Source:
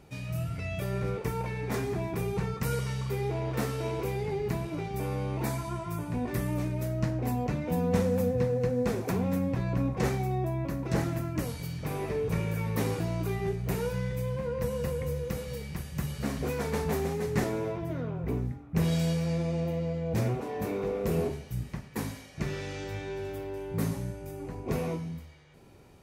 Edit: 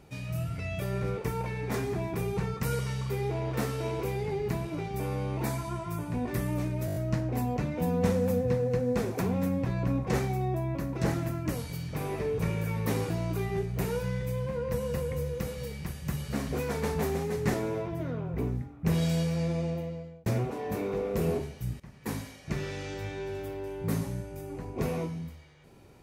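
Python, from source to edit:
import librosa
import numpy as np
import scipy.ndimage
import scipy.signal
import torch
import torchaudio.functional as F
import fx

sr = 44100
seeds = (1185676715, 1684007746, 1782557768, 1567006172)

y = fx.edit(x, sr, fx.stutter(start_s=6.86, slice_s=0.02, count=6),
    fx.fade_out_span(start_s=19.5, length_s=0.66),
    fx.fade_in_from(start_s=21.7, length_s=0.32, floor_db=-18.0), tone=tone)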